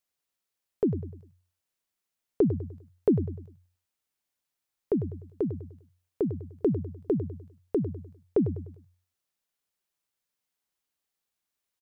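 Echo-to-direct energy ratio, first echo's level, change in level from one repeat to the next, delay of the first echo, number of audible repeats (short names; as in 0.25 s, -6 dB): -11.5 dB, -12.0 dB, -8.5 dB, 0.1 s, 3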